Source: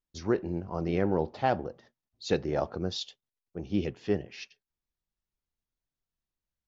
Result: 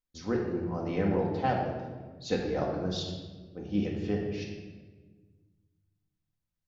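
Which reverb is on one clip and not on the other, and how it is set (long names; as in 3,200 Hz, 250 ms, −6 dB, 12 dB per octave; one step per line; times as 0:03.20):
rectangular room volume 1,200 cubic metres, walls mixed, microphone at 2 metres
level −4.5 dB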